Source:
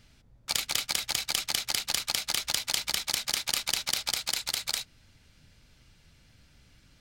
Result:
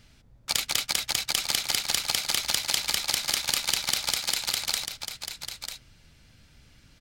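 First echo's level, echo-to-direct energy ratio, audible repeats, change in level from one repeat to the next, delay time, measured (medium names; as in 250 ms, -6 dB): -8.5 dB, -8.5 dB, 1, no regular repeats, 945 ms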